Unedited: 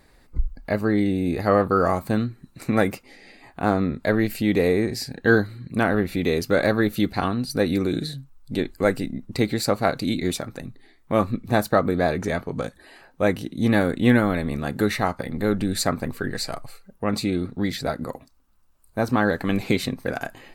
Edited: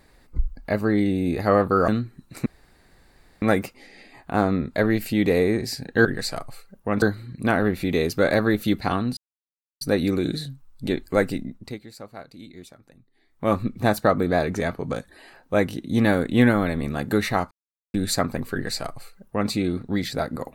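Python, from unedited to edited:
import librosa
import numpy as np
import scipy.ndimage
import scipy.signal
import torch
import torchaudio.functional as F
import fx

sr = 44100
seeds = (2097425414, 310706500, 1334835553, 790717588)

y = fx.edit(x, sr, fx.cut(start_s=1.88, length_s=0.25),
    fx.insert_room_tone(at_s=2.71, length_s=0.96),
    fx.insert_silence(at_s=7.49, length_s=0.64),
    fx.fade_down_up(start_s=9.03, length_s=2.21, db=-18.5, fade_s=0.44),
    fx.silence(start_s=15.19, length_s=0.43),
    fx.duplicate(start_s=16.21, length_s=0.97, to_s=5.34), tone=tone)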